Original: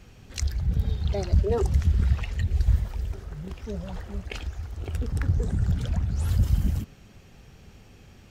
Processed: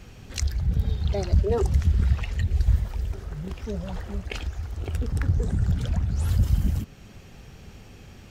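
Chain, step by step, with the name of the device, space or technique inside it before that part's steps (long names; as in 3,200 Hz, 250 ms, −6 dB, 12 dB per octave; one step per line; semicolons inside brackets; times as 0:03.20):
parallel compression (in parallel at −3 dB: downward compressor, threshold −37 dBFS, peak gain reduction 20 dB)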